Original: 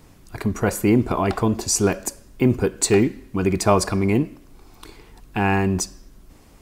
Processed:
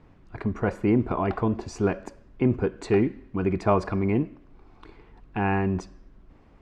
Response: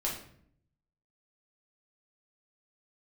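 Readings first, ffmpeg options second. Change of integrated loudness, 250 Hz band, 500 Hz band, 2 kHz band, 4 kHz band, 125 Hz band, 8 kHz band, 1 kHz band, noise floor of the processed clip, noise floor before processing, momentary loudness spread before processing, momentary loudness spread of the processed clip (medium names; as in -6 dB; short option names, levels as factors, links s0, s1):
-5.0 dB, -4.5 dB, -4.5 dB, -6.5 dB, -16.5 dB, -4.5 dB, under -25 dB, -4.5 dB, -55 dBFS, -50 dBFS, 10 LU, 9 LU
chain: -af "lowpass=2200,volume=0.596"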